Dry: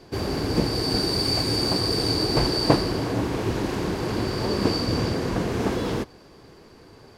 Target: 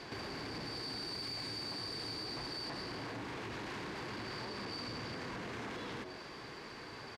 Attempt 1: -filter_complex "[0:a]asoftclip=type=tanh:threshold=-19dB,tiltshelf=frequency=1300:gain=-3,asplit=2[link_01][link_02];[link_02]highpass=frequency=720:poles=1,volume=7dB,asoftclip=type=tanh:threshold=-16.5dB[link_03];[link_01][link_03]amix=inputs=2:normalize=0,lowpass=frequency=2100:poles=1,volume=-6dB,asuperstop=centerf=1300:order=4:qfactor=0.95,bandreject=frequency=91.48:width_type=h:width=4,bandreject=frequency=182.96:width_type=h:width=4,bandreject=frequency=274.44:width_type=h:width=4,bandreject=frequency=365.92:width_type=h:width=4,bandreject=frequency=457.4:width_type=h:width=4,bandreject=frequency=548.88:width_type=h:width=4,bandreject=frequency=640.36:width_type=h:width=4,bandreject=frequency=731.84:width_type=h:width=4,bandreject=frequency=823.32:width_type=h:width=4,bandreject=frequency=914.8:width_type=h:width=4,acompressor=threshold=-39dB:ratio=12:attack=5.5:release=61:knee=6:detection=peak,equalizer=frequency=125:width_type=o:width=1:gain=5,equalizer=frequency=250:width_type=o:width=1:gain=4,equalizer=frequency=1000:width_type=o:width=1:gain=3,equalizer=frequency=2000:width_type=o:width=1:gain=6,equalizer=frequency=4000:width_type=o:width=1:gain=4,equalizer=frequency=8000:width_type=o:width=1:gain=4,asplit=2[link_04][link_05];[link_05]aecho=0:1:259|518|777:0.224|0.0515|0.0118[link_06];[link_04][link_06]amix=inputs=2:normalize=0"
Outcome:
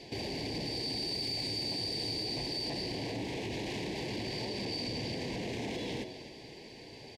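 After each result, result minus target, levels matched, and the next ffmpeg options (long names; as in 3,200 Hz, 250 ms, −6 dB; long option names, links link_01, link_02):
downward compressor: peak gain reduction −8 dB; 1,000 Hz band −6.5 dB; echo-to-direct +9.5 dB
-filter_complex "[0:a]asoftclip=type=tanh:threshold=-19dB,tiltshelf=frequency=1300:gain=-3,asplit=2[link_01][link_02];[link_02]highpass=frequency=720:poles=1,volume=7dB,asoftclip=type=tanh:threshold=-16.5dB[link_03];[link_01][link_03]amix=inputs=2:normalize=0,lowpass=frequency=2100:poles=1,volume=-6dB,asuperstop=centerf=1300:order=4:qfactor=0.95,bandreject=frequency=91.48:width_type=h:width=4,bandreject=frequency=182.96:width_type=h:width=4,bandreject=frequency=274.44:width_type=h:width=4,bandreject=frequency=365.92:width_type=h:width=4,bandreject=frequency=457.4:width_type=h:width=4,bandreject=frequency=548.88:width_type=h:width=4,bandreject=frequency=640.36:width_type=h:width=4,bandreject=frequency=731.84:width_type=h:width=4,bandreject=frequency=823.32:width_type=h:width=4,bandreject=frequency=914.8:width_type=h:width=4,acompressor=threshold=-45.5dB:ratio=12:attack=5.5:release=61:knee=6:detection=peak,equalizer=frequency=125:width_type=o:width=1:gain=5,equalizer=frequency=250:width_type=o:width=1:gain=4,equalizer=frequency=1000:width_type=o:width=1:gain=3,equalizer=frequency=2000:width_type=o:width=1:gain=6,equalizer=frequency=4000:width_type=o:width=1:gain=4,equalizer=frequency=8000:width_type=o:width=1:gain=4,asplit=2[link_04][link_05];[link_05]aecho=0:1:259|518|777:0.224|0.0515|0.0118[link_06];[link_04][link_06]amix=inputs=2:normalize=0"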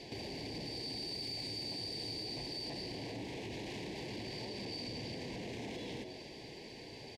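echo-to-direct +9.5 dB; 1,000 Hz band −6.0 dB
-filter_complex "[0:a]asoftclip=type=tanh:threshold=-19dB,tiltshelf=frequency=1300:gain=-3,asplit=2[link_01][link_02];[link_02]highpass=frequency=720:poles=1,volume=7dB,asoftclip=type=tanh:threshold=-16.5dB[link_03];[link_01][link_03]amix=inputs=2:normalize=0,lowpass=frequency=2100:poles=1,volume=-6dB,asuperstop=centerf=1300:order=4:qfactor=0.95,bandreject=frequency=91.48:width_type=h:width=4,bandreject=frequency=182.96:width_type=h:width=4,bandreject=frequency=274.44:width_type=h:width=4,bandreject=frequency=365.92:width_type=h:width=4,bandreject=frequency=457.4:width_type=h:width=4,bandreject=frequency=548.88:width_type=h:width=4,bandreject=frequency=640.36:width_type=h:width=4,bandreject=frequency=731.84:width_type=h:width=4,bandreject=frequency=823.32:width_type=h:width=4,bandreject=frequency=914.8:width_type=h:width=4,acompressor=threshold=-45.5dB:ratio=12:attack=5.5:release=61:knee=6:detection=peak,equalizer=frequency=125:width_type=o:width=1:gain=5,equalizer=frequency=250:width_type=o:width=1:gain=4,equalizer=frequency=1000:width_type=o:width=1:gain=3,equalizer=frequency=2000:width_type=o:width=1:gain=6,equalizer=frequency=4000:width_type=o:width=1:gain=4,equalizer=frequency=8000:width_type=o:width=1:gain=4,asplit=2[link_04][link_05];[link_05]aecho=0:1:259|518:0.075|0.0172[link_06];[link_04][link_06]amix=inputs=2:normalize=0"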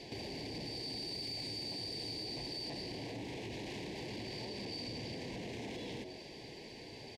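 1,000 Hz band −6.0 dB
-filter_complex "[0:a]asoftclip=type=tanh:threshold=-19dB,tiltshelf=frequency=1300:gain=-3,asplit=2[link_01][link_02];[link_02]highpass=frequency=720:poles=1,volume=7dB,asoftclip=type=tanh:threshold=-16.5dB[link_03];[link_01][link_03]amix=inputs=2:normalize=0,lowpass=frequency=2100:poles=1,volume=-6dB,bandreject=frequency=91.48:width_type=h:width=4,bandreject=frequency=182.96:width_type=h:width=4,bandreject=frequency=274.44:width_type=h:width=4,bandreject=frequency=365.92:width_type=h:width=4,bandreject=frequency=457.4:width_type=h:width=4,bandreject=frequency=548.88:width_type=h:width=4,bandreject=frequency=640.36:width_type=h:width=4,bandreject=frequency=731.84:width_type=h:width=4,bandreject=frequency=823.32:width_type=h:width=4,bandreject=frequency=914.8:width_type=h:width=4,acompressor=threshold=-45.5dB:ratio=12:attack=5.5:release=61:knee=6:detection=peak,equalizer=frequency=125:width_type=o:width=1:gain=5,equalizer=frequency=250:width_type=o:width=1:gain=4,equalizer=frequency=1000:width_type=o:width=1:gain=3,equalizer=frequency=2000:width_type=o:width=1:gain=6,equalizer=frequency=4000:width_type=o:width=1:gain=4,equalizer=frequency=8000:width_type=o:width=1:gain=4,asplit=2[link_04][link_05];[link_05]aecho=0:1:259|518:0.075|0.0172[link_06];[link_04][link_06]amix=inputs=2:normalize=0"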